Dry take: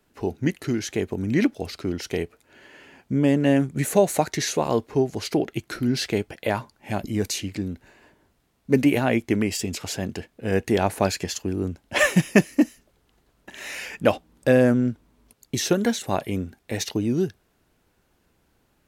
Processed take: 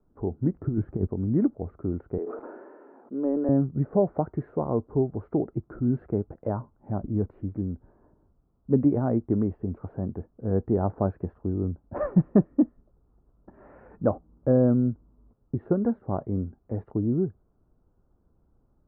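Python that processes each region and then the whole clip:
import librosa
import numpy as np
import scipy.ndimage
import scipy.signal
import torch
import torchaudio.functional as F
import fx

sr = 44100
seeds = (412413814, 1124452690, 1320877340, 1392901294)

y = fx.chain(x, sr, fx.over_compress(threshold_db=-26.0, ratio=-0.5),
    fx.bass_treble(bass_db=7, treble_db=-9), at=(0.54, 1.07))
y = fx.chain(y, sr, fx.highpass(hz=310.0, slope=24),
    fx.sustainer(db_per_s=23.0), at=(2.18, 3.49))
y = scipy.signal.sosfilt(scipy.signal.cheby1(4, 1.0, 1300.0, 'lowpass', fs=sr, output='sos'), y)
y = fx.tilt_eq(y, sr, slope=-3.0)
y = F.gain(torch.from_numpy(y), -7.5).numpy()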